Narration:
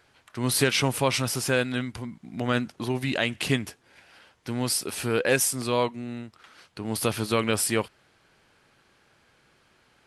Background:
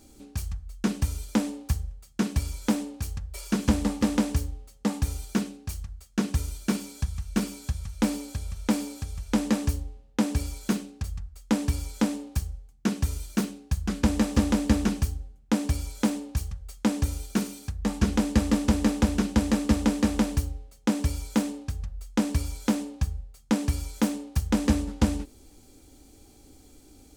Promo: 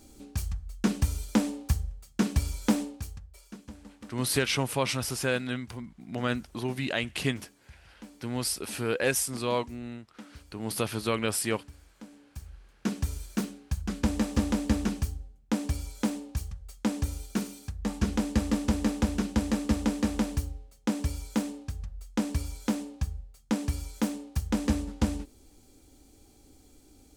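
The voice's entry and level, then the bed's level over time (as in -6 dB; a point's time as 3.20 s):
3.75 s, -4.0 dB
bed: 2.82 s 0 dB
3.68 s -23 dB
12.07 s -23 dB
12.75 s -4 dB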